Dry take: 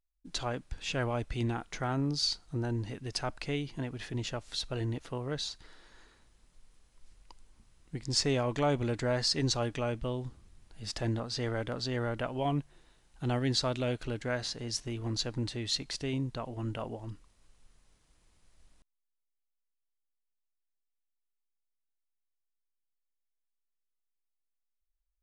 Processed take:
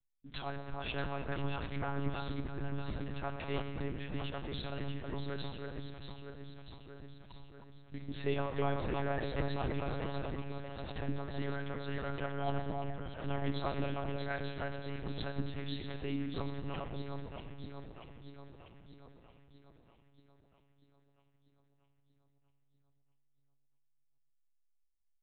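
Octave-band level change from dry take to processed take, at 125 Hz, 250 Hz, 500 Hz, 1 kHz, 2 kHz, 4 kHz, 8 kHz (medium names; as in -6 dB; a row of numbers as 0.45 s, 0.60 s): -4.5 dB, -4.5 dB, -4.0 dB, -2.0 dB, -3.0 dB, -12.5 dB, under -35 dB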